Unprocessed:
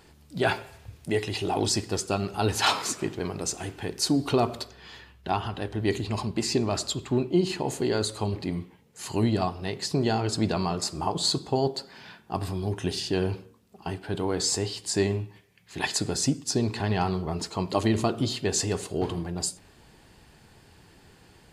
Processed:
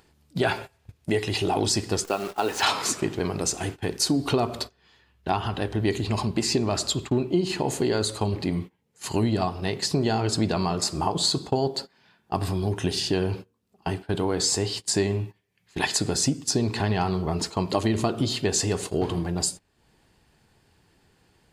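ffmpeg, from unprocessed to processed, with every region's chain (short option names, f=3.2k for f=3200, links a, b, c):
-filter_complex "[0:a]asettb=1/sr,asplit=3[a][b][c];[a]atrim=end=2.044[d];[b]atrim=start=2.04:end=2.63,asetpts=PTS-STARTPTS,afade=t=in:d=0.004:c=qsin,afade=t=out:st=0.586:d=0.004:c=qsin,highpass=350,lowpass=6k,equalizer=f=4.4k:t=o:w=1:g=-5.5,acrusher=bits=8:dc=4:mix=0:aa=0.000001[e];[c]atrim=start=2.626[f];[d][e]acrossfade=d=0.004:c1=hsin:c2=qsin[g];[g][f]acrossfade=d=0.004:c1=qsin:c2=hsin,acompressor=mode=upward:threshold=-37dB:ratio=2.5,agate=range=-21dB:threshold=-37dB:ratio=16:detection=peak,acompressor=threshold=-27dB:ratio=2.5,volume=5.5dB"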